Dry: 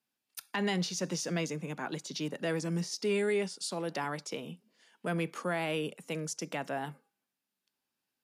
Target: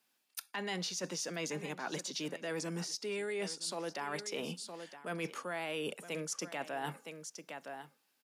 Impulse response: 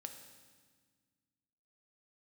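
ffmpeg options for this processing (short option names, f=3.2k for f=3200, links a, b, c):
-af "highpass=f=420:p=1,aecho=1:1:965:0.133,areverse,acompressor=threshold=-46dB:ratio=6,areverse,volume=9.5dB"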